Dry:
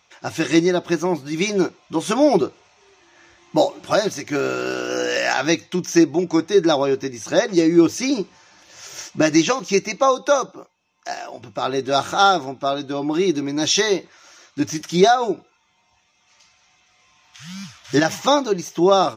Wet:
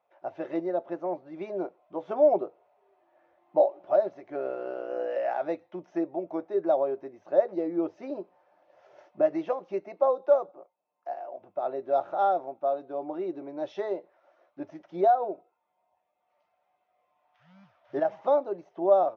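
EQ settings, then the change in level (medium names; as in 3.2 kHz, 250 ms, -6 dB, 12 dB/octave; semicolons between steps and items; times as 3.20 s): band-pass filter 620 Hz, Q 3.4; distance through air 210 m; -1.5 dB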